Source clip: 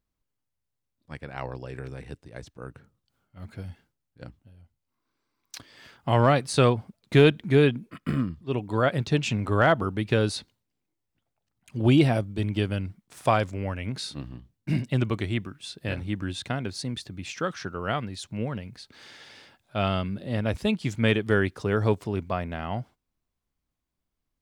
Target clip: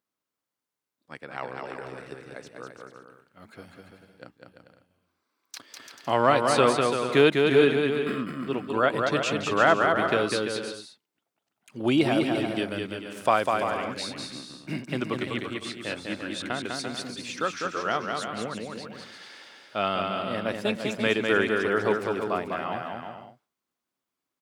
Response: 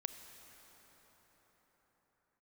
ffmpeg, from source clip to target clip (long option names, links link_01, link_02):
-filter_complex "[0:a]highpass=270,equalizer=frequency=1300:width_type=o:width=0.46:gain=3.5,asplit=2[link_01][link_02];[link_02]aecho=0:1:200|340|438|506.6|554.6:0.631|0.398|0.251|0.158|0.1[link_03];[link_01][link_03]amix=inputs=2:normalize=0"